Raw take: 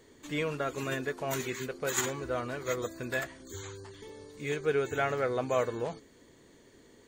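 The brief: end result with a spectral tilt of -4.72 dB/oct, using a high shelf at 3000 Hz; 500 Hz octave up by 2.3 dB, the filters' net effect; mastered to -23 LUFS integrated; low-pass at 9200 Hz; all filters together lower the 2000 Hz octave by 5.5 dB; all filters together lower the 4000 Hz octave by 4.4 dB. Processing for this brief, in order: LPF 9200 Hz; bell 500 Hz +3 dB; bell 2000 Hz -7.5 dB; high shelf 3000 Hz +3 dB; bell 4000 Hz -5 dB; gain +9 dB

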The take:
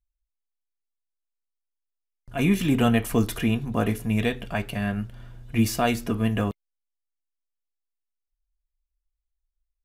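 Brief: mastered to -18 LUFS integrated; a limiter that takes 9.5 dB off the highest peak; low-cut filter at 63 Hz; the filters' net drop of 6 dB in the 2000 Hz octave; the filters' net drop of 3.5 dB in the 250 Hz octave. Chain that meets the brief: HPF 63 Hz; bell 250 Hz -4 dB; bell 2000 Hz -8 dB; gain +13.5 dB; limiter -6.5 dBFS

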